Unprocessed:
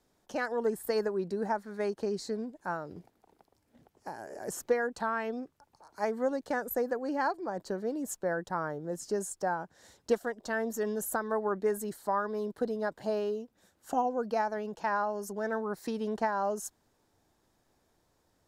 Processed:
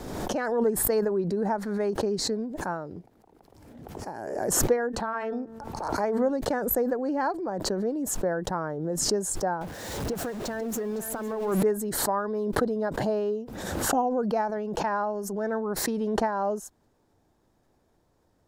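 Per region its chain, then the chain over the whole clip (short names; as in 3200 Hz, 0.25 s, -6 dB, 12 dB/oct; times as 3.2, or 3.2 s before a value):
4.76–6.3 high shelf 4500 Hz -4 dB + de-hum 224.9 Hz, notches 8
9.61–11.63 zero-crossing step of -36.5 dBFS + compressor 4:1, threshold -33 dBFS + echo 0.509 s -12.5 dB
whole clip: tilt shelf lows +4.5 dB, about 1200 Hz; backwards sustainer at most 37 dB/s; gain +1 dB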